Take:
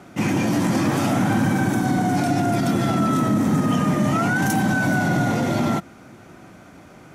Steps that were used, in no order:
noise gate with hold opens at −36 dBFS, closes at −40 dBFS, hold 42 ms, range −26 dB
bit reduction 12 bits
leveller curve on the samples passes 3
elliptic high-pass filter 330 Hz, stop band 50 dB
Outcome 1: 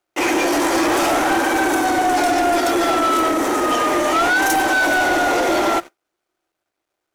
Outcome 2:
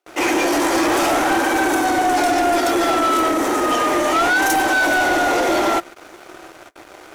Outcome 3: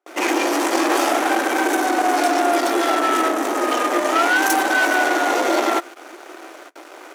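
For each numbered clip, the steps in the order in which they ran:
elliptic high-pass filter, then noise gate with hold, then bit reduction, then leveller curve on the samples
noise gate with hold, then bit reduction, then elliptic high-pass filter, then leveller curve on the samples
bit reduction, then noise gate with hold, then leveller curve on the samples, then elliptic high-pass filter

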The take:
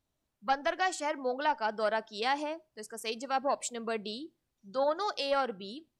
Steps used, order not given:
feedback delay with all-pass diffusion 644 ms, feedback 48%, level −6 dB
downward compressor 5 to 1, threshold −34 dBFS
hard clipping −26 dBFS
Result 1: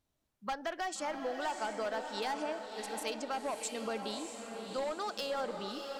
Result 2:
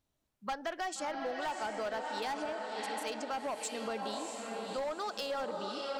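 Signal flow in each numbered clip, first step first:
hard clipping, then downward compressor, then feedback delay with all-pass diffusion
feedback delay with all-pass diffusion, then hard clipping, then downward compressor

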